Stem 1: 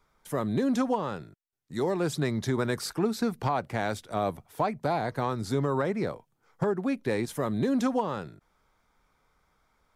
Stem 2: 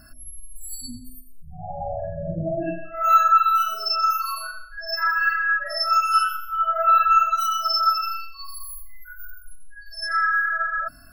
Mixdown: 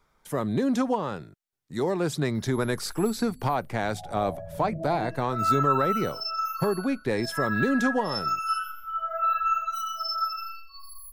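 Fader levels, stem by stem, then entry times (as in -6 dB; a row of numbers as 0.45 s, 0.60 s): +1.5 dB, -8.5 dB; 0.00 s, 2.35 s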